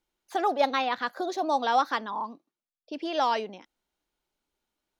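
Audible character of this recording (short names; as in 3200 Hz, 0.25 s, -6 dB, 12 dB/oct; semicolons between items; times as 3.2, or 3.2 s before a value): noise floor -93 dBFS; spectral tilt 0.0 dB/oct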